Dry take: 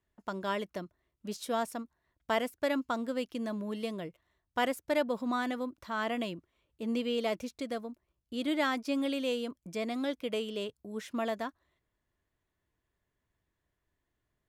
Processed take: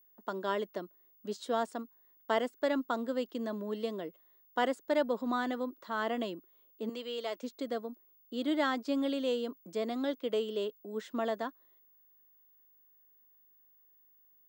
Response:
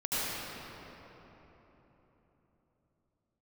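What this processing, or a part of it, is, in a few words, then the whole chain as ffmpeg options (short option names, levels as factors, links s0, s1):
old television with a line whistle: -filter_complex "[0:a]asettb=1/sr,asplit=3[s0][s1][s2];[s0]atrim=end=6.894[s3];[s1]atrim=start=6.89:end=7.43,asetpts=PTS-STARTPTS,afade=t=in:d=0.004:c=qsin,afade=t=out:st=0.536:d=0.004:c=qsin,highpass=f=1000:p=1[s4];[s2]atrim=start=7.426[s5];[s3][s4]acrossfade=d=0.004:c1=hsin:c2=qsin[s6];[s6][s5]acrossfade=d=0.004:c1=qsin:c2=hsin,highpass=f=210:w=0.5412,highpass=f=210:w=1.3066,equalizer=f=410:t=q:w=4:g=4,equalizer=f=2400:t=q:w=4:g=-10,equalizer=f=5700:t=q:w=4:g=-7,lowpass=f=7500:w=0.5412,lowpass=f=7500:w=1.3066,aeval=exprs='val(0)+0.000794*sin(2*PI*15625*n/s)':c=same"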